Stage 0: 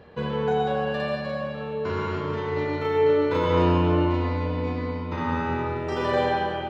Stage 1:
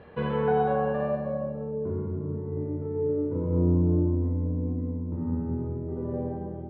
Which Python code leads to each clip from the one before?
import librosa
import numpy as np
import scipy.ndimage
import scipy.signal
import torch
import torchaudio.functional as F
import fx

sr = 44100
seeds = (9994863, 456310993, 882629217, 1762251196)

y = fx.filter_sweep_lowpass(x, sr, from_hz=3100.0, to_hz=270.0, start_s=0.05, end_s=2.12, q=0.9)
y = fx.air_absorb(y, sr, metres=82.0)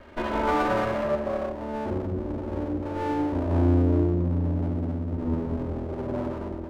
y = fx.lower_of_two(x, sr, delay_ms=3.2)
y = y * 10.0 ** (3.5 / 20.0)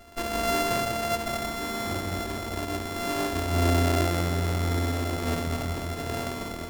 y = np.r_[np.sort(x[:len(x) // 64 * 64].reshape(-1, 64), axis=1).ravel(), x[len(x) // 64 * 64:]]
y = y + 10.0 ** (-7.5 / 20.0) * np.pad(y, (int(1089 * sr / 1000.0), 0))[:len(y)]
y = y * 10.0 ** (-2.0 / 20.0)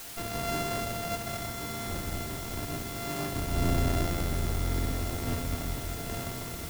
y = fx.octave_divider(x, sr, octaves=1, level_db=3.0)
y = fx.quant_dither(y, sr, seeds[0], bits=6, dither='triangular')
y = y * 10.0 ** (-7.0 / 20.0)